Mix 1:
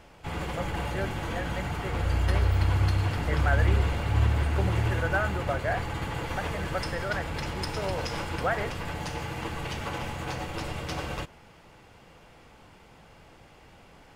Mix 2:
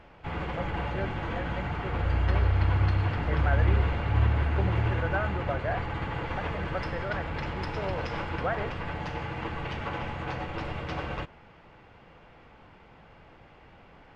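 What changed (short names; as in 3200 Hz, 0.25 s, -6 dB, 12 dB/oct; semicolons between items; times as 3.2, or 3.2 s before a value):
background: add bell 2200 Hz +5.5 dB 2.7 oct; master: add tape spacing loss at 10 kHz 27 dB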